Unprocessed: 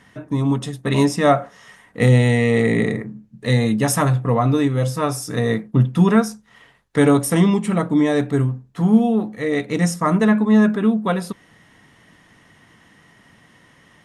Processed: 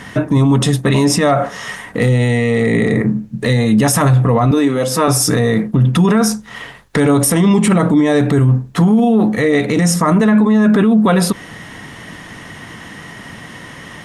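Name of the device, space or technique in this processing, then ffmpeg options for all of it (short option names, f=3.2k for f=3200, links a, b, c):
loud club master: -filter_complex "[0:a]acompressor=threshold=-20dB:ratio=2,asoftclip=type=hard:threshold=-10.5dB,alimiter=level_in=22.5dB:limit=-1dB:release=50:level=0:latency=1,asettb=1/sr,asplit=3[a][b][c];[a]atrim=end=4.514[d];[b]atrim=start=4.51:end=5.08,asetpts=PTS-STARTPTS,afade=t=in:d=0.004:c=qsin,afade=t=out:st=0.566:d=0.004:c=qsin,highpass=f=190:w=0.5412,highpass=f=190:w=1.3066[e];[c]atrim=start=5.076[f];[d][e]acrossfade=d=0.004:c1=hsin:c2=qsin[g];[g][f]acrossfade=d=0.004:c1=qsin:c2=hsin,volume=-4dB"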